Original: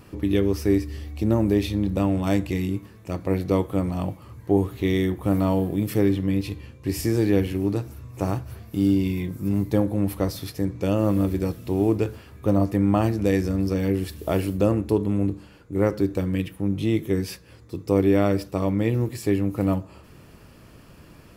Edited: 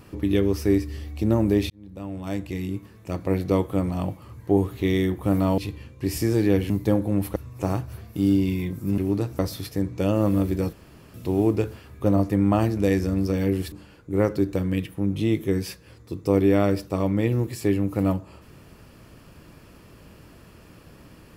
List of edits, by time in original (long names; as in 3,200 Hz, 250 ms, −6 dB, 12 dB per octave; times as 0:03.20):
0:01.70–0:03.15: fade in
0:05.58–0:06.41: remove
0:07.53–0:07.94: swap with 0:09.56–0:10.22
0:11.56: splice in room tone 0.41 s
0:14.14–0:15.34: remove